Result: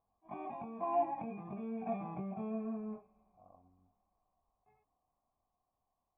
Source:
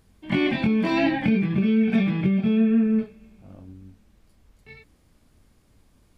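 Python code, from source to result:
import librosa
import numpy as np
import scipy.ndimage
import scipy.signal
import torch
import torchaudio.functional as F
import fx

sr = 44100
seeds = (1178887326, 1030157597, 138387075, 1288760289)

y = fx.doppler_pass(x, sr, speed_mps=14, closest_m=13.0, pass_at_s=2.32)
y = fx.formant_cascade(y, sr, vowel='a')
y = fx.attack_slew(y, sr, db_per_s=400.0)
y = y * librosa.db_to_amplitude(6.5)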